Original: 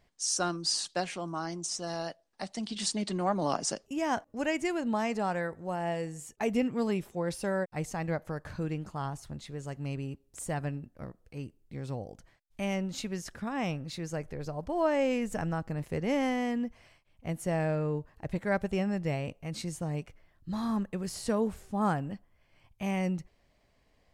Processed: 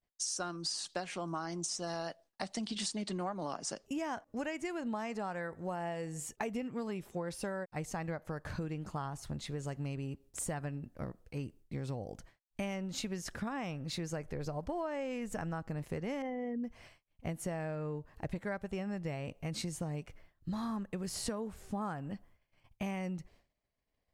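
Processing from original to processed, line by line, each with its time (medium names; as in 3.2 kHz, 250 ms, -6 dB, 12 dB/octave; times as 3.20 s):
16.22–16.64 s: resonances exaggerated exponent 2
whole clip: expander -54 dBFS; dynamic bell 1.3 kHz, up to +3 dB, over -42 dBFS, Q 1.2; compression 10:1, threshold -38 dBFS; trim +3.5 dB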